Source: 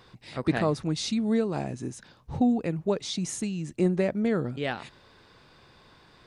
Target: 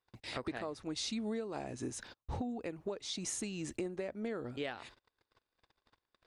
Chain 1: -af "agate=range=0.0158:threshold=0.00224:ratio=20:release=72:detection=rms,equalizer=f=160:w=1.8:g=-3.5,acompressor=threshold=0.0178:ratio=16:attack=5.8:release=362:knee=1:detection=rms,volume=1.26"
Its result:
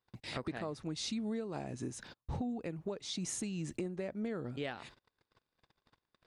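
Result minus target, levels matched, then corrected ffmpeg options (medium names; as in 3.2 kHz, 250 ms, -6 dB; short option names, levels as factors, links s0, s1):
125 Hz band +4.0 dB
-af "agate=range=0.0158:threshold=0.00224:ratio=20:release=72:detection=rms,equalizer=f=160:w=1.8:g=-13.5,acompressor=threshold=0.0178:ratio=16:attack=5.8:release=362:knee=1:detection=rms,volume=1.26"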